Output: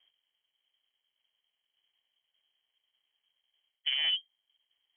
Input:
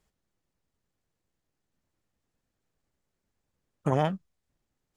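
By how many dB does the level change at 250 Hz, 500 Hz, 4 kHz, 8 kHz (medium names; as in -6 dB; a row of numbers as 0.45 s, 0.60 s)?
under -40 dB, under -30 dB, +21.0 dB, no reading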